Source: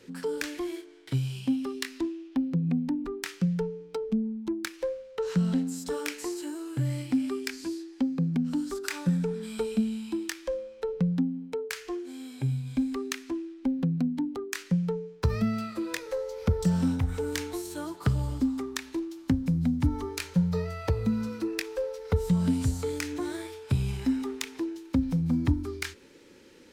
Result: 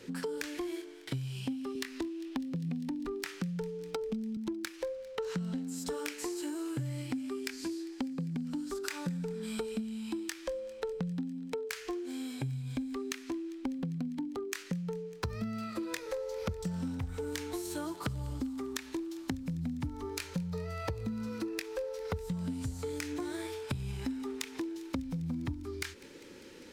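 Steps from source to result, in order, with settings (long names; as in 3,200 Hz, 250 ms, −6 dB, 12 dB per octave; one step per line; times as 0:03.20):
downward compressor 6 to 1, threshold −37 dBFS, peak gain reduction 17 dB
delay with a high-pass on its return 200 ms, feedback 78%, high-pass 2,000 Hz, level −20.5 dB
0:01.75–0:04.37: multiband upward and downward compressor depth 40%
level +3 dB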